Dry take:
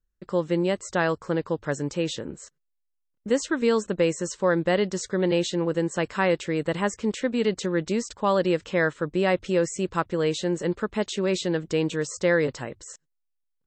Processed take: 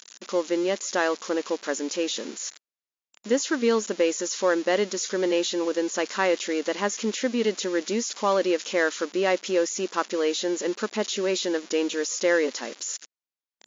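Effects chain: zero-crossing glitches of -22 dBFS; brick-wall FIR band-pass 200–7200 Hz

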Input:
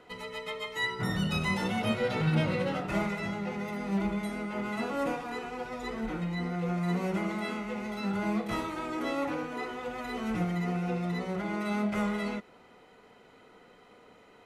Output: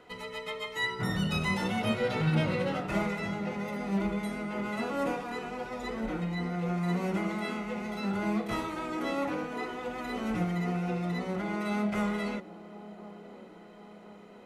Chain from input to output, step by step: feedback echo behind a band-pass 1046 ms, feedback 57%, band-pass 450 Hz, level -13.5 dB

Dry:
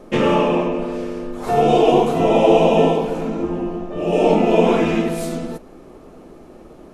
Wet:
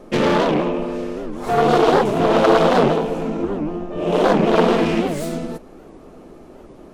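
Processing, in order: self-modulated delay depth 0.36 ms; warped record 78 rpm, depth 250 cents

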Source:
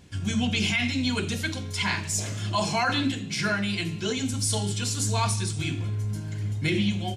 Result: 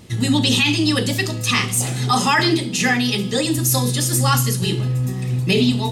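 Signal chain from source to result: tape speed +21%; trim +8.5 dB

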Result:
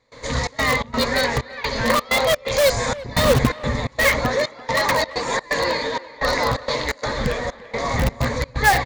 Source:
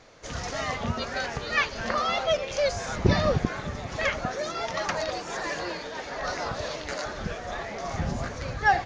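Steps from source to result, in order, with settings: rippled EQ curve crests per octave 1, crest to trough 11 dB; trance gate ".xxx.xx.xxxx." 128 bpm -24 dB; in parallel at -5 dB: integer overflow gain 20.5 dB; on the sum: speakerphone echo 340 ms, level -17 dB; trim +6 dB

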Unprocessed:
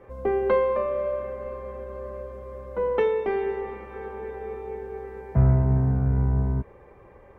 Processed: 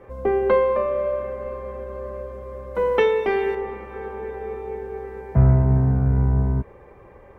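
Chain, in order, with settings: 2.75–3.55 s: treble shelf 2.1 kHz +11 dB; trim +3.5 dB

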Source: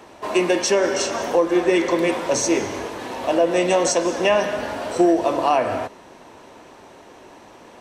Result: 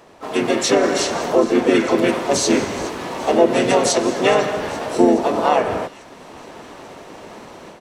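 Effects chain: level rider gain up to 10 dB; feedback echo behind a high-pass 420 ms, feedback 61%, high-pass 2.4 kHz, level -17 dB; harmony voices -7 st -6 dB, -5 st -5 dB, +4 st -6 dB; trim -5.5 dB

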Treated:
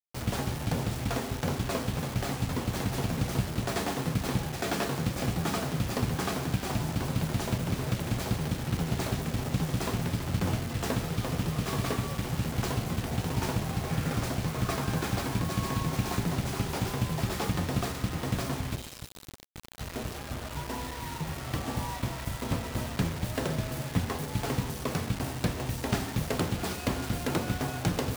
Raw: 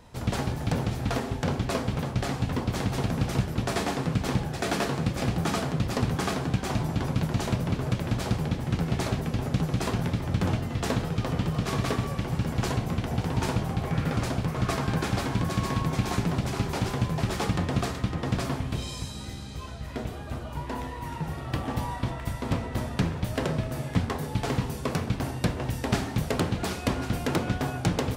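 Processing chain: 18.75–19.78 s: feedback comb 220 Hz, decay 1.1 s, mix 50%; word length cut 6-bit, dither none; trim -3 dB

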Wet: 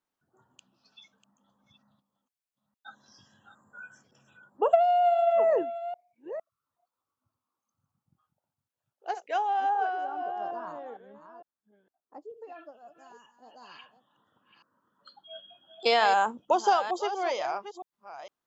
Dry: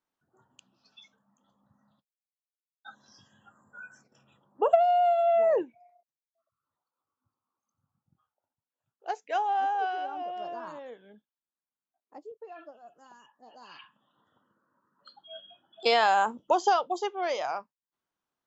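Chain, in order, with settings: chunks repeated in reverse 457 ms, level -11.5 dB; 9.69–12.30 s: resonant high shelf 1.8 kHz -6 dB, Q 1.5

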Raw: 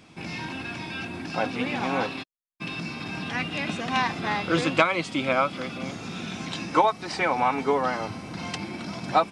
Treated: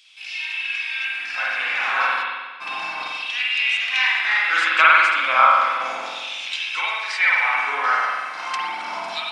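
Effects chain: LFO high-pass saw down 0.33 Hz 810–3300 Hz; spring tank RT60 1.4 s, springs 46 ms, chirp 80 ms, DRR -5 dB; trim +1 dB

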